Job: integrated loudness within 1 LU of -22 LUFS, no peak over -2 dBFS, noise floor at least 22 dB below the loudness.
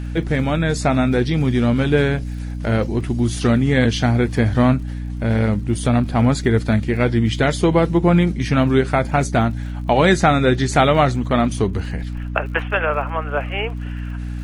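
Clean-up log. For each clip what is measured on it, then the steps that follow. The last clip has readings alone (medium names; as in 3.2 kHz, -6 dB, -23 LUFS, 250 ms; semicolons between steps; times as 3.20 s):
tick rate 40 per s; hum 60 Hz; highest harmonic 300 Hz; hum level -24 dBFS; loudness -18.5 LUFS; peak level -2.0 dBFS; loudness target -22.0 LUFS
-> de-click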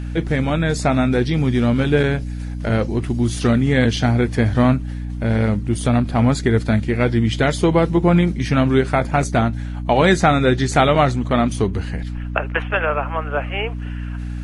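tick rate 0.069 per s; hum 60 Hz; highest harmonic 300 Hz; hum level -24 dBFS
-> de-hum 60 Hz, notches 5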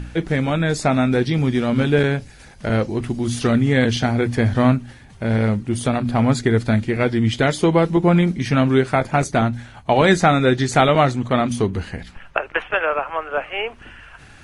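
hum not found; loudness -19.0 LUFS; peak level -3.0 dBFS; loudness target -22.0 LUFS
-> trim -3 dB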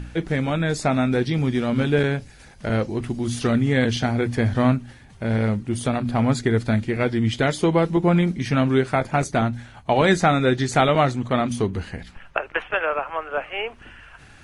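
loudness -22.0 LUFS; peak level -6.0 dBFS; noise floor -48 dBFS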